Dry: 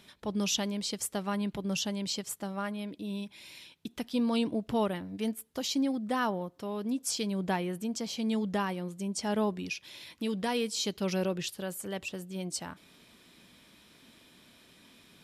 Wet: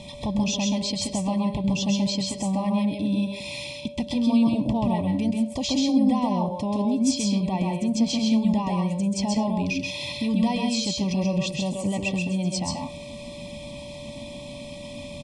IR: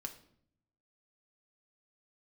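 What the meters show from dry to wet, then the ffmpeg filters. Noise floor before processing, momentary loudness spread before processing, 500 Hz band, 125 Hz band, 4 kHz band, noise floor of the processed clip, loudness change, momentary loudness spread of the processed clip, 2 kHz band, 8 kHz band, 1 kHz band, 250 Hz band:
-60 dBFS, 8 LU, +4.0 dB, +12.0 dB, +6.5 dB, -39 dBFS, +8.5 dB, 16 LU, +4.5 dB, +4.5 dB, +6.0 dB, +10.5 dB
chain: -filter_complex "[0:a]acrossover=split=6900[s0][s1];[s1]acompressor=threshold=0.00178:ratio=4:attack=1:release=60[s2];[s0][s2]amix=inputs=2:normalize=0,lowshelf=f=280:g=9.5,aecho=1:1:1.2:0.61,asplit=2[s3][s4];[s4]acompressor=threshold=0.0126:ratio=6,volume=1.26[s5];[s3][s5]amix=inputs=2:normalize=0,alimiter=limit=0.0668:level=0:latency=1:release=108,aeval=exprs='val(0)+0.00398*sin(2*PI*580*n/s)':c=same,asplit=2[s6][s7];[1:a]atrim=start_sample=2205,afade=t=out:st=0.17:d=0.01,atrim=end_sample=7938,adelay=131[s8];[s7][s8]afir=irnorm=-1:irlink=0,volume=1.19[s9];[s6][s9]amix=inputs=2:normalize=0,aresample=22050,aresample=44100,asuperstop=centerf=1500:order=20:qfactor=2.1,volume=1.68"

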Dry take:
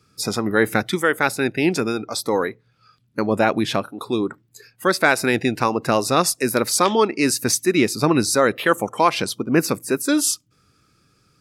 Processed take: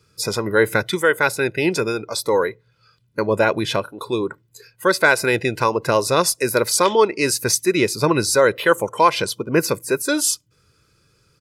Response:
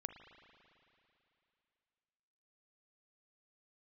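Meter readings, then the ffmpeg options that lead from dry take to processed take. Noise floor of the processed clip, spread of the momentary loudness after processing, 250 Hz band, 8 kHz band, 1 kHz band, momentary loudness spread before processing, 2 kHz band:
-62 dBFS, 9 LU, -3.0 dB, +1.0 dB, +1.0 dB, 7 LU, +2.0 dB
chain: -af "aecho=1:1:2:0.56"

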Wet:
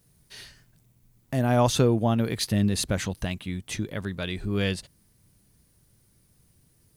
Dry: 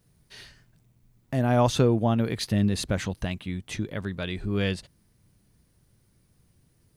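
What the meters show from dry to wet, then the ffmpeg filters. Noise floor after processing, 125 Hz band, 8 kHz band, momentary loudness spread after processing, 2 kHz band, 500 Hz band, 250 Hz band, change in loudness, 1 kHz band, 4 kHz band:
-64 dBFS, 0.0 dB, +5.0 dB, 12 LU, +0.5 dB, 0.0 dB, 0.0 dB, +0.5 dB, 0.0 dB, +2.5 dB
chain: -af "highshelf=f=6200:g=8.5" -ar 48000 -c:a sbc -b:a 192k

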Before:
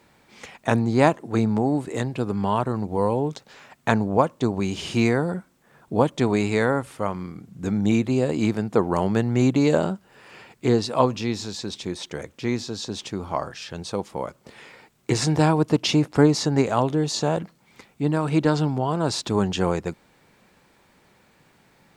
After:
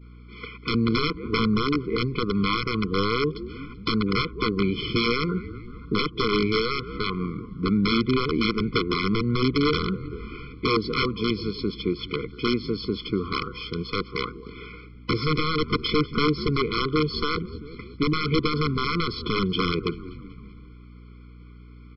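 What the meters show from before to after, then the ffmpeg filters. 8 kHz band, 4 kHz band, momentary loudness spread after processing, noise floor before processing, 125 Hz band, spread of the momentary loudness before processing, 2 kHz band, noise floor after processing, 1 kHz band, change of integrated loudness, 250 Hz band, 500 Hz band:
under -25 dB, +5.0 dB, 13 LU, -60 dBFS, -3.5 dB, 12 LU, +2.5 dB, -45 dBFS, -2.0 dB, -2.0 dB, -2.5 dB, -3.5 dB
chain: -filter_complex "[0:a]highpass=f=170:p=1,bandreject=f=4100:w=13,agate=range=0.0224:threshold=0.00178:ratio=3:detection=peak,highshelf=f=3300:g=-4.5,asplit=6[s0][s1][s2][s3][s4][s5];[s1]adelay=192,afreqshift=-78,volume=0.1[s6];[s2]adelay=384,afreqshift=-156,volume=0.061[s7];[s3]adelay=576,afreqshift=-234,volume=0.0372[s8];[s4]adelay=768,afreqshift=-312,volume=0.0226[s9];[s5]adelay=960,afreqshift=-390,volume=0.0138[s10];[s0][s6][s7][s8][s9][s10]amix=inputs=6:normalize=0,acompressor=threshold=0.0398:ratio=2,adynamicequalizer=threshold=0.00447:dfrequency=270:dqfactor=6.2:tfrequency=270:tqfactor=6.2:attack=5:release=100:ratio=0.375:range=2.5:mode=cutabove:tftype=bell,aeval=exprs='val(0)+0.00251*(sin(2*PI*60*n/s)+sin(2*PI*2*60*n/s)/2+sin(2*PI*3*60*n/s)/3+sin(2*PI*4*60*n/s)/4+sin(2*PI*5*60*n/s)/5)':c=same,aresample=11025,aeval=exprs='(mod(11.2*val(0)+1,2)-1)/11.2':c=same,aresample=44100,afftfilt=real='re*eq(mod(floor(b*sr/1024/500),2),0)':imag='im*eq(mod(floor(b*sr/1024/500),2),0)':win_size=1024:overlap=0.75,volume=2.51"

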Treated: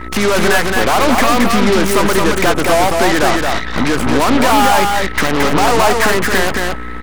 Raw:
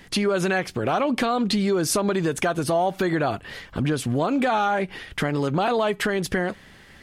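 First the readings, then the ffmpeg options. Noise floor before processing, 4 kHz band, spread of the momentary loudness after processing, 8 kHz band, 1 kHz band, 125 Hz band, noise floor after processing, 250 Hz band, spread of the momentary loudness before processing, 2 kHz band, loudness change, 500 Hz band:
-49 dBFS, +12.5 dB, 5 LU, +11.5 dB, +12.0 dB, +5.5 dB, -23 dBFS, +8.5 dB, 6 LU, +13.5 dB, +10.5 dB, +9.0 dB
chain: -filter_complex "[0:a]equalizer=f=125:t=o:w=1:g=-7,equalizer=f=250:t=o:w=1:g=7,equalizer=f=500:t=o:w=1:g=4,equalizer=f=1000:t=o:w=1:g=12,equalizer=f=2000:t=o:w=1:g=11,equalizer=f=4000:t=o:w=1:g=-11,acrossover=split=130|3900[s0][s1][s2];[s1]asoftclip=type=hard:threshold=0.211[s3];[s0][s3][s2]amix=inputs=3:normalize=0,aeval=exprs='val(0)+0.0355*(sin(2*PI*60*n/s)+sin(2*PI*2*60*n/s)/2+sin(2*PI*3*60*n/s)/3+sin(2*PI*4*60*n/s)/4+sin(2*PI*5*60*n/s)/5)':c=same,aeval=exprs='0.299*(cos(1*acos(clip(val(0)/0.299,-1,1)))-cos(1*PI/2))+0.0376*(cos(7*acos(clip(val(0)/0.299,-1,1)))-cos(7*PI/2))+0.075*(cos(8*acos(clip(val(0)/0.299,-1,1)))-cos(8*PI/2))':c=same,aeval=exprs='val(0)+0.02*sin(2*PI*1300*n/s)':c=same,aecho=1:1:221:0.668,volume=1.33" -ar 44100 -c:a aac -b:a 192k

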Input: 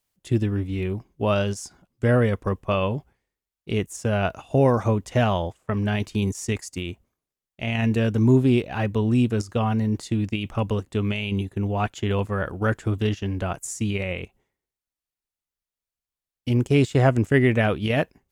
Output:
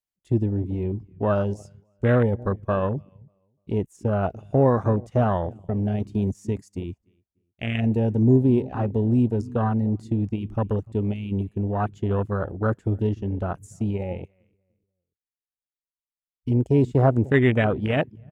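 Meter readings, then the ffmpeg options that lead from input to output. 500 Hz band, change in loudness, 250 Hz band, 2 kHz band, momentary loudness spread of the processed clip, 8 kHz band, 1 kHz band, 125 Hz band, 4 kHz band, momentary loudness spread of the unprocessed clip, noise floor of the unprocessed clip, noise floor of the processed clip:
0.0 dB, 0.0 dB, 0.0 dB, -4.0 dB, 10 LU, under -15 dB, -0.5 dB, 0.0 dB, -9.5 dB, 9 LU, under -85 dBFS, under -85 dBFS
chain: -filter_complex "[0:a]asplit=2[s0][s1];[s1]adelay=295,lowpass=f=920:p=1,volume=0.126,asplit=2[s2][s3];[s3]adelay=295,lowpass=f=920:p=1,volume=0.4,asplit=2[s4][s5];[s5]adelay=295,lowpass=f=920:p=1,volume=0.4[s6];[s0][s2][s4][s6]amix=inputs=4:normalize=0,afwtdn=0.0501"

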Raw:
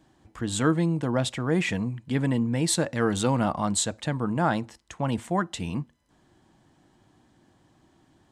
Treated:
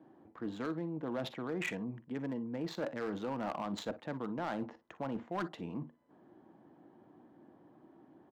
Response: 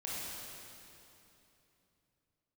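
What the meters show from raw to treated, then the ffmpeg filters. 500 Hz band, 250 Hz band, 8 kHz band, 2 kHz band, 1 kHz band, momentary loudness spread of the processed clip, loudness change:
-10.5 dB, -12.0 dB, -27.0 dB, -11.5 dB, -11.5 dB, 6 LU, -13.0 dB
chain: -filter_complex "[0:a]aresample=16000,aresample=44100,acrossover=split=550[s0][s1];[s1]adynamicsmooth=sensitivity=1.5:basefreq=990[s2];[s0][s2]amix=inputs=2:normalize=0,alimiter=limit=0.106:level=0:latency=1,areverse,acompressor=threshold=0.0158:ratio=12,areverse,highpass=270,aecho=1:1:45|58:0.126|0.133,asoftclip=type=hard:threshold=0.0158,volume=2"

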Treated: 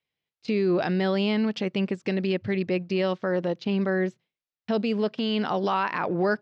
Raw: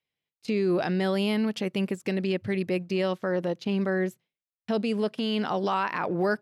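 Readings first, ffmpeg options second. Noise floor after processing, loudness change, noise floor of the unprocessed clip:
under -85 dBFS, +1.5 dB, under -85 dBFS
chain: -af "lowpass=f=5700:w=0.5412,lowpass=f=5700:w=1.3066,volume=1.19"

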